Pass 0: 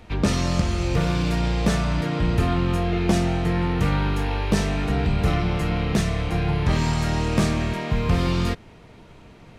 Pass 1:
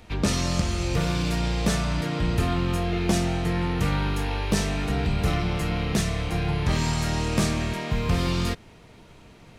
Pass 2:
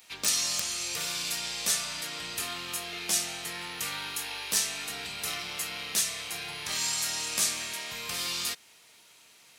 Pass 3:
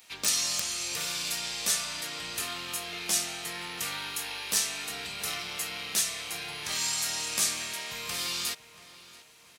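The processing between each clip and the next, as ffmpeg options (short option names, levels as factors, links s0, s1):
-af "highshelf=f=3900:g=7.5,volume=0.708"
-af "aderivative,aeval=exprs='(mod(11.2*val(0)+1,2)-1)/11.2':c=same,volume=2.37"
-filter_complex "[0:a]asplit=2[s0][s1];[s1]adelay=682,lowpass=f=3000:p=1,volume=0.158,asplit=2[s2][s3];[s3]adelay=682,lowpass=f=3000:p=1,volume=0.42,asplit=2[s4][s5];[s5]adelay=682,lowpass=f=3000:p=1,volume=0.42,asplit=2[s6][s7];[s7]adelay=682,lowpass=f=3000:p=1,volume=0.42[s8];[s0][s2][s4][s6][s8]amix=inputs=5:normalize=0"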